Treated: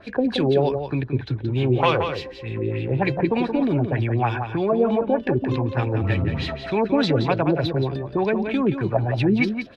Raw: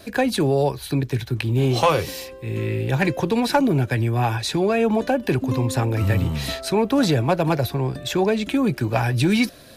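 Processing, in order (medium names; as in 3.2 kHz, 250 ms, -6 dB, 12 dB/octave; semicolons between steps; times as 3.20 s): LFO low-pass sine 3.3 Hz 330–3800 Hz; echo from a far wall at 30 m, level -7 dB; trim -3 dB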